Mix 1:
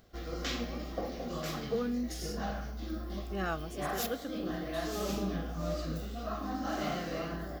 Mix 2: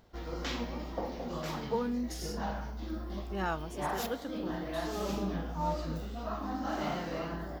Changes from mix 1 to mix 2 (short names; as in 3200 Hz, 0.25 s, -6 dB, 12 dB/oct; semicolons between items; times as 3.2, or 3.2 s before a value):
background: add high shelf 5400 Hz -6.5 dB; master: remove Butterworth band-stop 920 Hz, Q 4.9